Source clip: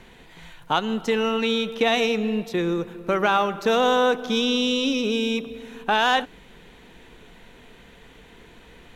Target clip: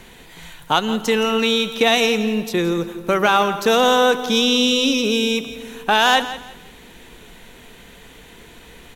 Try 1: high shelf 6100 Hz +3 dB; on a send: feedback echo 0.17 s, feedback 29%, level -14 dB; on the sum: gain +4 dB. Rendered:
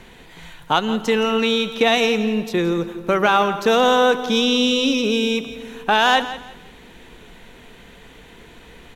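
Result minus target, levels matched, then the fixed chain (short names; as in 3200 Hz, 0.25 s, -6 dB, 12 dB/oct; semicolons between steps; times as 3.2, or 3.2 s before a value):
8000 Hz band -4.5 dB
high shelf 6100 Hz +13 dB; on a send: feedback echo 0.17 s, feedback 29%, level -14 dB; on the sum: gain +4 dB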